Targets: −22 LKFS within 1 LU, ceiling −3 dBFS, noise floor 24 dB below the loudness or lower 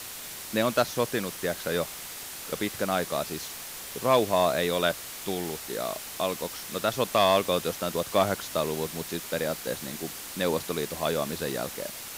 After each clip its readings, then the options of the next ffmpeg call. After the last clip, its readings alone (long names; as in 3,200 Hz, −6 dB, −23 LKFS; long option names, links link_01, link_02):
background noise floor −40 dBFS; target noise floor −53 dBFS; integrated loudness −28.5 LKFS; sample peak −10.5 dBFS; target loudness −22.0 LKFS
→ -af "afftdn=noise_reduction=13:noise_floor=-40"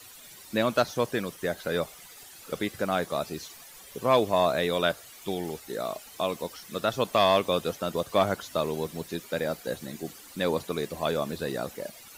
background noise floor −49 dBFS; target noise floor −53 dBFS
→ -af "afftdn=noise_reduction=6:noise_floor=-49"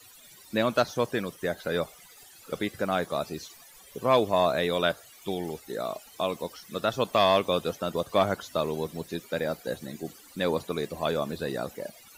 background noise floor −52 dBFS; target noise floor −53 dBFS
→ -af "afftdn=noise_reduction=6:noise_floor=-52"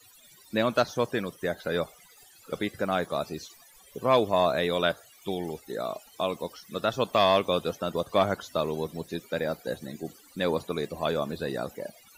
background noise floor −56 dBFS; integrated loudness −29.0 LKFS; sample peak −10.5 dBFS; target loudness −22.0 LKFS
→ -af "volume=7dB"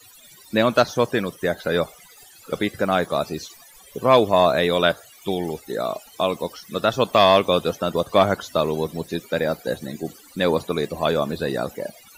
integrated loudness −22.0 LKFS; sample peak −3.5 dBFS; background noise floor −49 dBFS